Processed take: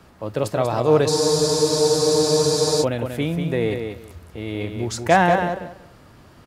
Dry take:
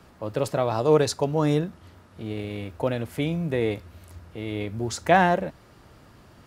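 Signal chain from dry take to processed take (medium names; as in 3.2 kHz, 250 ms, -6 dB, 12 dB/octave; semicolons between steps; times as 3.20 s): feedback delay 189 ms, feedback 19%, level -6.5 dB; spectral freeze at 1.11 s, 1.72 s; trim +2.5 dB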